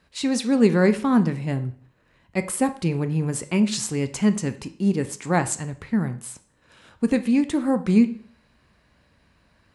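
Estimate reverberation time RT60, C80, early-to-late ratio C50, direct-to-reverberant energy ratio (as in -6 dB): 0.50 s, 19.0 dB, 15.0 dB, 10.0 dB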